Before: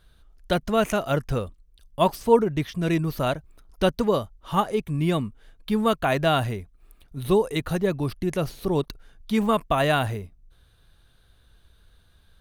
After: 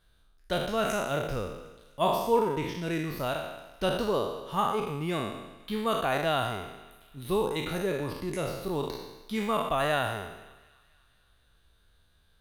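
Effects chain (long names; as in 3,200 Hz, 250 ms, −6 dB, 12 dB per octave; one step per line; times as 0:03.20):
peak hold with a decay on every bin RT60 1.03 s
low-shelf EQ 250 Hz −4 dB
on a send: delay with a high-pass on its return 253 ms, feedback 57%, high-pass 1,400 Hz, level −22 dB
on the sum: level −7.5 dB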